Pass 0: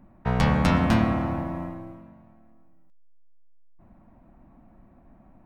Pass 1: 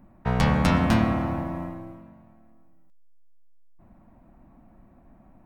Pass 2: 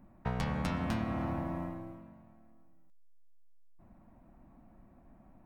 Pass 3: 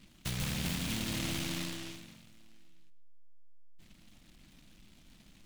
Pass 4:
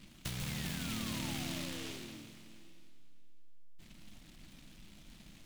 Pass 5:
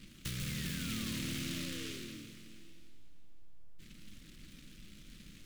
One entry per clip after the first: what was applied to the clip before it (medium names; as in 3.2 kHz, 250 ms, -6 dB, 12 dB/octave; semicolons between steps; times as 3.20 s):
treble shelf 7.1 kHz +4.5 dB
compression 6:1, threshold -25 dBFS, peak gain reduction 9.5 dB; trim -5 dB
hard clipper -28.5 dBFS, distortion -16 dB; simulated room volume 2000 m³, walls furnished, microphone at 0.63 m; delay time shaken by noise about 2.9 kHz, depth 0.4 ms; trim -1 dB
compression 3:1, threshold -42 dBFS, peak gain reduction 8.5 dB; painted sound fall, 0.48–2.25 s, 280–2200 Hz -58 dBFS; plate-style reverb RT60 2.6 s, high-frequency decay 1×, DRR 8 dB; trim +2.5 dB
Butterworth band-stop 800 Hz, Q 1.1; saturation -32.5 dBFS, distortion -19 dB; added noise brown -69 dBFS; trim +2 dB